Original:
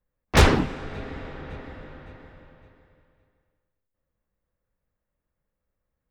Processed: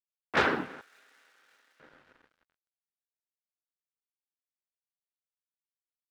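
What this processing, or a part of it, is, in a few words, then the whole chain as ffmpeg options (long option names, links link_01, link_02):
pocket radio on a weak battery: -filter_complex "[0:a]highpass=260,lowpass=3600,aeval=exprs='sgn(val(0))*max(abs(val(0))-0.00422,0)':channel_layout=same,equalizer=frequency=1500:width_type=o:width=0.51:gain=8,asettb=1/sr,asplit=3[link_01][link_02][link_03];[link_01]atrim=end=0.814[link_04];[link_02]atrim=start=0.81:end=1.8,asetpts=PTS-STARTPTS,afade=type=in:duration=0.004:curve=qsin,afade=type=out:start_time=0.986:duration=0.004:curve=qsin,aderivative[link_05];[link_03]atrim=start=1.796[link_06];[link_04][link_05]acrossfade=duration=0.004:curve1=hsin:curve2=qsin[link_07];[link_07][link_06]acrossfade=duration=0.004:curve1=qsin:curve2=hsin,volume=-7.5dB"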